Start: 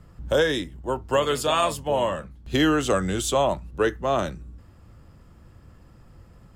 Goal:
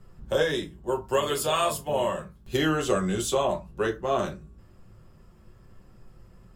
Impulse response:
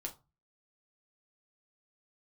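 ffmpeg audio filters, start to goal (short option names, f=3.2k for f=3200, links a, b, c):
-filter_complex "[0:a]asetnsamples=n=441:p=0,asendcmd='0.87 highshelf g 12;2.57 highshelf g 3.5',highshelf=f=9k:g=3.5[a];[1:a]atrim=start_sample=2205,asetrate=52920,aresample=44100[b];[a][b]afir=irnorm=-1:irlink=0"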